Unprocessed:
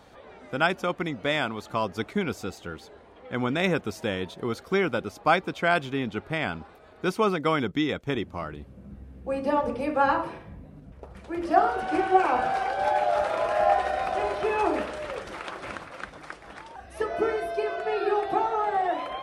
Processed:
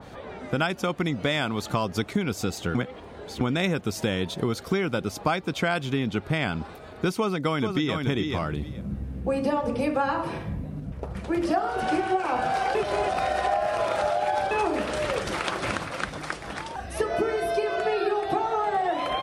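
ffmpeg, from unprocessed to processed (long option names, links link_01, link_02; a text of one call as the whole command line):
ffmpeg -i in.wav -filter_complex "[0:a]asplit=2[link_01][link_02];[link_02]afade=type=in:start_time=7.17:duration=0.01,afade=type=out:start_time=7.95:duration=0.01,aecho=0:1:430|860:0.375837|0.0375837[link_03];[link_01][link_03]amix=inputs=2:normalize=0,asplit=5[link_04][link_05][link_06][link_07][link_08];[link_04]atrim=end=2.752[link_09];[link_05]atrim=start=2.748:end=3.412,asetpts=PTS-STARTPTS,areverse[link_10];[link_06]atrim=start=3.408:end=12.752[link_11];[link_07]atrim=start=12.748:end=14.512,asetpts=PTS-STARTPTS,areverse[link_12];[link_08]atrim=start=14.508[link_13];[link_09][link_10]acrossfade=duration=0.004:curve1=hsin:curve2=hsin[link_14];[link_14][link_11]acrossfade=duration=0.004:curve1=hsin:curve2=hsin[link_15];[link_15][link_12]acrossfade=duration=0.004:curve1=hsin:curve2=hsin[link_16];[link_16][link_13]acrossfade=duration=0.004:curve1=hsin:curve2=hsin,equalizer=frequency=130:width=0.71:gain=6.5,acompressor=threshold=-30dB:ratio=6,adynamicequalizer=threshold=0.00316:dfrequency=2900:dqfactor=0.7:tfrequency=2900:tqfactor=0.7:attack=5:release=100:ratio=0.375:range=3:mode=boostabove:tftype=highshelf,volume=7.5dB" out.wav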